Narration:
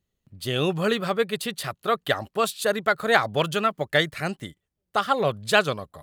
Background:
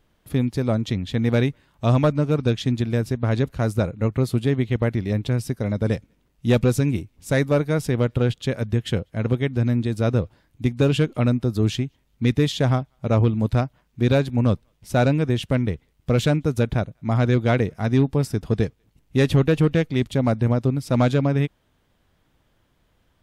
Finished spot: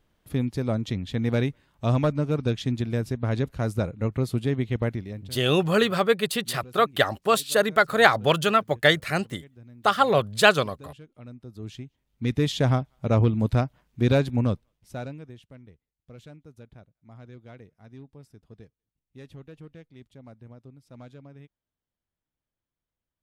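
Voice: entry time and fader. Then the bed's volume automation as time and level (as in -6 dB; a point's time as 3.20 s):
4.90 s, +2.5 dB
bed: 4.89 s -4.5 dB
5.51 s -27.5 dB
11.06 s -27.5 dB
12.53 s -2 dB
14.34 s -2 dB
15.50 s -27 dB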